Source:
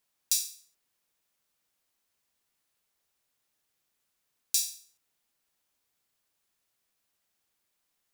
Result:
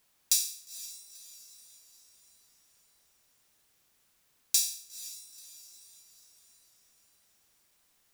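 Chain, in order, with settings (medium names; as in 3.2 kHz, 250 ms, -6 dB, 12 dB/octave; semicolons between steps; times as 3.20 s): bass shelf 140 Hz +4.5 dB; in parallel at +2 dB: compression, threshold -38 dBFS, peak gain reduction 15.5 dB; on the sum: saturation -11 dBFS, distortion -15 dB; echo that smears into a reverb 482 ms, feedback 49%, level -15.5 dB; endings held to a fixed fall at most 110 dB/s; trim +1.5 dB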